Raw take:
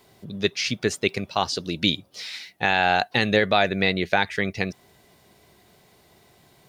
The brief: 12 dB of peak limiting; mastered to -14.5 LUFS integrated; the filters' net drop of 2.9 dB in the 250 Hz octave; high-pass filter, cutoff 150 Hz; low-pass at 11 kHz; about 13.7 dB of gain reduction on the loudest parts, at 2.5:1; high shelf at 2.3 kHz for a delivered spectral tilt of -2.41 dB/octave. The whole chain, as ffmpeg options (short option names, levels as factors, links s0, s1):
-af "highpass=150,lowpass=11000,equalizer=f=250:t=o:g=-3,highshelf=f=2300:g=6,acompressor=threshold=0.0178:ratio=2.5,volume=14.1,alimiter=limit=0.891:level=0:latency=1"